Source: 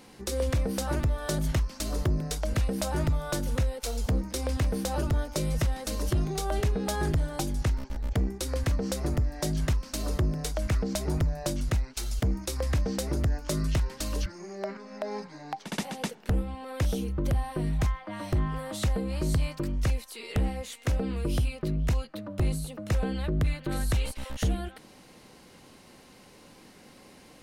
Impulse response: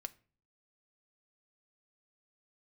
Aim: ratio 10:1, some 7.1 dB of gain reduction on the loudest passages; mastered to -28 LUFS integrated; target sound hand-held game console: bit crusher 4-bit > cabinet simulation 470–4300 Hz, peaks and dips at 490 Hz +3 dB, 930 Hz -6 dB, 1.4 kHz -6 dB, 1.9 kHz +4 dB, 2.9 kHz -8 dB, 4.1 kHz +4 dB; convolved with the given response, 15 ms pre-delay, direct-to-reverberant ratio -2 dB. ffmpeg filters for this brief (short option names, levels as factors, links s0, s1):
-filter_complex "[0:a]acompressor=threshold=0.0355:ratio=10,asplit=2[s0][s1];[1:a]atrim=start_sample=2205,adelay=15[s2];[s1][s2]afir=irnorm=-1:irlink=0,volume=1.88[s3];[s0][s3]amix=inputs=2:normalize=0,acrusher=bits=3:mix=0:aa=0.000001,highpass=470,equalizer=f=490:t=q:w=4:g=3,equalizer=f=930:t=q:w=4:g=-6,equalizer=f=1400:t=q:w=4:g=-6,equalizer=f=1900:t=q:w=4:g=4,equalizer=f=2900:t=q:w=4:g=-8,equalizer=f=4100:t=q:w=4:g=4,lowpass=f=4300:w=0.5412,lowpass=f=4300:w=1.3066,volume=1.88"